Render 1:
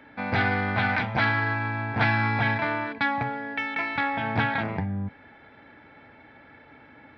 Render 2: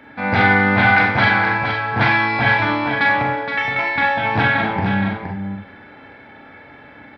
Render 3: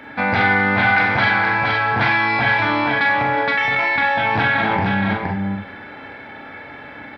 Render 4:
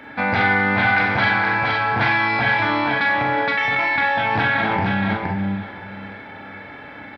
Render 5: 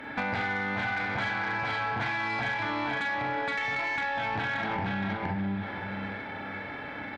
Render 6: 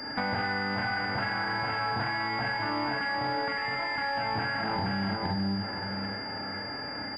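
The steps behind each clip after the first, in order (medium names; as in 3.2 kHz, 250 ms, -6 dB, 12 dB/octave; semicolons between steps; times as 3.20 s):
on a send: delay 469 ms -6.5 dB; on the sum: Schroeder reverb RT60 0.41 s, combs from 30 ms, DRR 0 dB; trim +5.5 dB
bass shelf 440 Hz -4 dB; in parallel at 0 dB: compressor with a negative ratio -25 dBFS, ratio -1; on the sum: trim -2.5 dB
feedback delay 520 ms, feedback 39%, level -16 dB; trim -1.5 dB
compression 8:1, threshold -26 dBFS, peak gain reduction 12.5 dB; valve stage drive 21 dB, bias 0.3
knee-point frequency compression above 1.9 kHz 1.5:1; class-D stage that switches slowly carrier 4.8 kHz; trim +1 dB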